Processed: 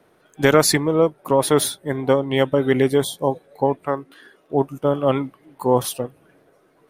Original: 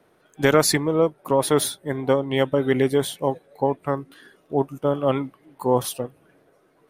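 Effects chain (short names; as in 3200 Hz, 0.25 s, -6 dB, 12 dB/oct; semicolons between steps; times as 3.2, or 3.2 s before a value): 3.06–3.37 spectral repair 1100–3100 Hz after; 3.85–4.54 tone controls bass -8 dB, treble -4 dB; gain +2.5 dB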